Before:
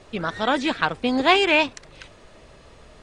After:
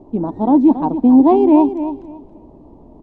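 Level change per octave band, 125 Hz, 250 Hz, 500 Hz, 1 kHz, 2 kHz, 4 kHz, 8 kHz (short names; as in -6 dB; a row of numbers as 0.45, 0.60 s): +7.0 dB, +15.5 dB, +6.5 dB, +3.5 dB, under -25 dB, under -25 dB, under -25 dB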